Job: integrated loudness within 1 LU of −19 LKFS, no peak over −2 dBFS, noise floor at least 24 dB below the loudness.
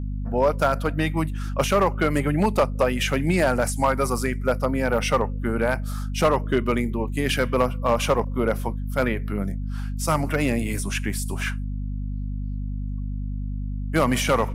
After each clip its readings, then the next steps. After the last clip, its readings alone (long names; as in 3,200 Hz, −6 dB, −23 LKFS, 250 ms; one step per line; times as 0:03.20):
share of clipped samples 0.6%; peaks flattened at −12.0 dBFS; mains hum 50 Hz; hum harmonics up to 250 Hz; level of the hum −26 dBFS; integrated loudness −24.0 LKFS; sample peak −12.0 dBFS; target loudness −19.0 LKFS
→ clipped peaks rebuilt −12 dBFS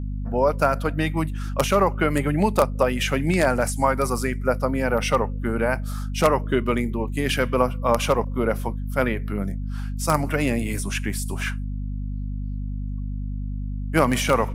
share of clipped samples 0.0%; mains hum 50 Hz; hum harmonics up to 250 Hz; level of the hum −26 dBFS
→ mains-hum notches 50/100/150/200/250 Hz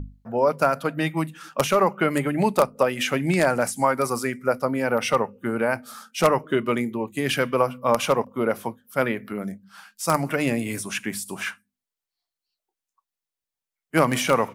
mains hum none found; integrated loudness −24.0 LKFS; sample peak −2.5 dBFS; target loudness −19.0 LKFS
→ level +5 dB
brickwall limiter −2 dBFS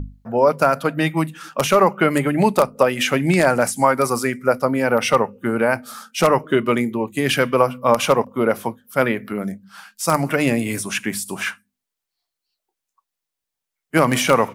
integrated loudness −19.0 LKFS; sample peak −2.0 dBFS; background noise floor −84 dBFS